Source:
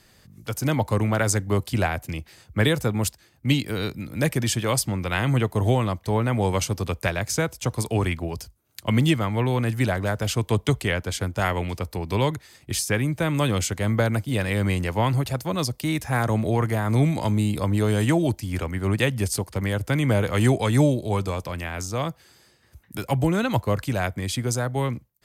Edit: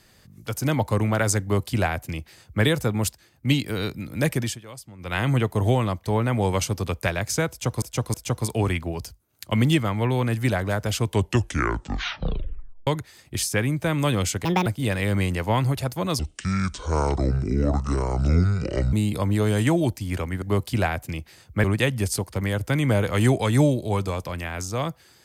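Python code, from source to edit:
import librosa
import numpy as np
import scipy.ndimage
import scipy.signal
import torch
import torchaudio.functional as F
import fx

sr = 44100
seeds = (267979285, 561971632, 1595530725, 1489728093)

y = fx.edit(x, sr, fx.duplicate(start_s=1.42, length_s=1.22, to_s=18.84),
    fx.fade_down_up(start_s=4.31, length_s=0.95, db=-18.0, fade_s=0.28, curve='qsin'),
    fx.repeat(start_s=7.5, length_s=0.32, count=3),
    fx.tape_stop(start_s=10.43, length_s=1.8),
    fx.speed_span(start_s=13.81, length_s=0.34, speed=1.6),
    fx.speed_span(start_s=15.68, length_s=1.67, speed=0.61), tone=tone)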